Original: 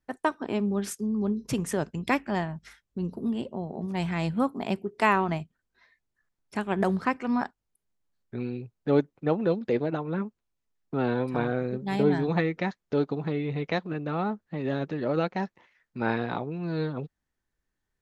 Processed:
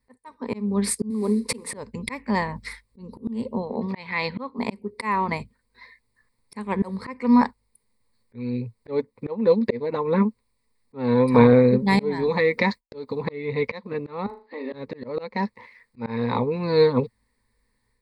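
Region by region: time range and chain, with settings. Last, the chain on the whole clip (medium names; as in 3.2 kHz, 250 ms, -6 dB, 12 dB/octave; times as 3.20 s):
1.10–1.73 s: CVSD coder 64 kbps + resonant low shelf 210 Hz -11 dB, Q 1.5 + hum notches 60/120/180 Hz
3.62–4.59 s: low-pass 4 kHz 24 dB/octave + tilt EQ +2.5 dB/octave
12.27–13.21 s: treble shelf 6.6 kHz +10.5 dB + expander -51 dBFS + compression 2:1, threshold -29 dBFS
14.26–14.73 s: brick-wall FIR band-pass 240–5000 Hz + compression 2:1, threshold -51 dBFS + flutter echo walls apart 6.7 m, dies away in 0.3 s
whole clip: rippled EQ curve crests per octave 0.94, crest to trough 15 dB; level rider gain up to 6 dB; slow attack 488 ms; trim +4 dB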